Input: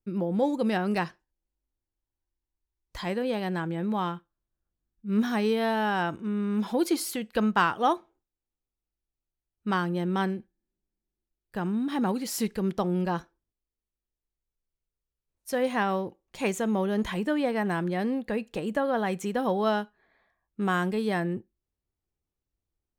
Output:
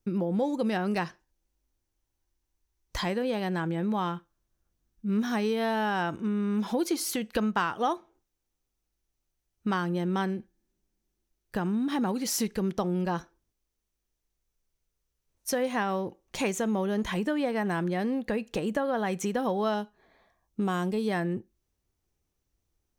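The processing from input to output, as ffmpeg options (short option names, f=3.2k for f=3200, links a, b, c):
-filter_complex "[0:a]asettb=1/sr,asplit=3[a][b][c];[a]atrim=end=19.744[d];[b]atrim=start=19.74:end=21.08,asetpts=PTS-STARTPTS,afade=t=in:d=0.004:c=qsin,afade=t=out:st=1.336:d=0.004:c=qsin,equalizer=f=1.7k:t=o:w=0.98:g=-7.5[e];[c]atrim=start=21.076[f];[d][e]acrossfade=d=0.004:c1=hsin:c2=qsin[g];[g][f]acrossfade=d=0.004:c1=qsin:c2=hsin,equalizer=f=6k:t=o:w=0.22:g=6.5,acompressor=threshold=-37dB:ratio=2.5,volume=7.5dB"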